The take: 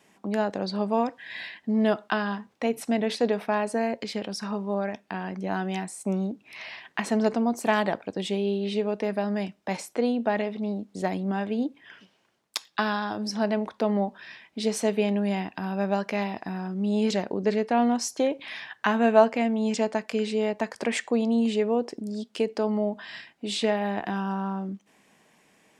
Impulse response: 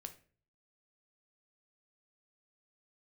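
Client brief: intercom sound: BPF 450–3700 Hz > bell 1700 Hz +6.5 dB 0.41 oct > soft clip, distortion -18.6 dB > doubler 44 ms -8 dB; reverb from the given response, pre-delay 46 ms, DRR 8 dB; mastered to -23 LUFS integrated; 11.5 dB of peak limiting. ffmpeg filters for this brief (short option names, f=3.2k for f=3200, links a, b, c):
-filter_complex "[0:a]alimiter=limit=-16dB:level=0:latency=1,asplit=2[a][b];[1:a]atrim=start_sample=2205,adelay=46[c];[b][c]afir=irnorm=-1:irlink=0,volume=-3dB[d];[a][d]amix=inputs=2:normalize=0,highpass=450,lowpass=3.7k,equalizer=f=1.7k:t=o:w=0.41:g=6.5,asoftclip=threshold=-20dB,asplit=2[e][f];[f]adelay=44,volume=-8dB[g];[e][g]amix=inputs=2:normalize=0,volume=8.5dB"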